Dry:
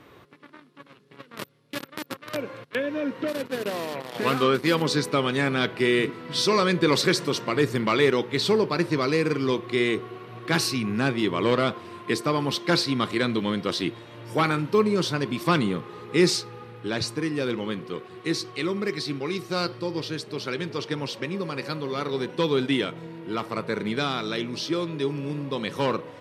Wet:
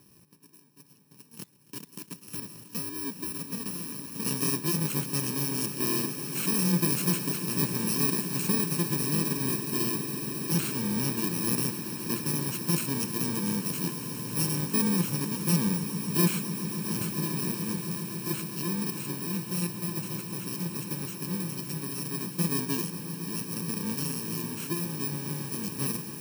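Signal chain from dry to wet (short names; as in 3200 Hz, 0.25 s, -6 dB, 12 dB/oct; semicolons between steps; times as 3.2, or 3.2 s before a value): FFT order left unsorted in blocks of 64 samples; bell 180 Hz +11.5 dB 0.65 oct; swelling echo 0.137 s, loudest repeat 8, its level -16 dB; gain -8 dB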